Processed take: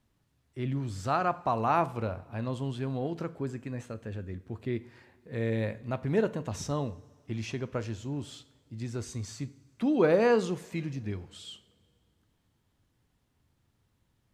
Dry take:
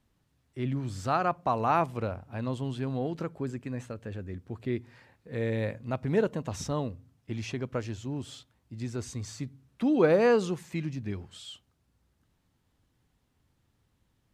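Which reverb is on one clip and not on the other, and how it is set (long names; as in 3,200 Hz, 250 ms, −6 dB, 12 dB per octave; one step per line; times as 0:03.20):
coupled-rooms reverb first 0.47 s, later 2.6 s, from −18 dB, DRR 12.5 dB
level −1 dB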